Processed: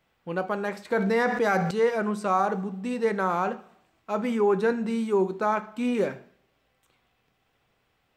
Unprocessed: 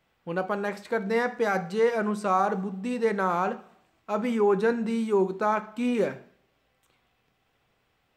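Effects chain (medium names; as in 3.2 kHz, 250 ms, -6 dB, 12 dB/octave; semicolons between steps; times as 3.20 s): 0.91–1.71 s: level flattener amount 70%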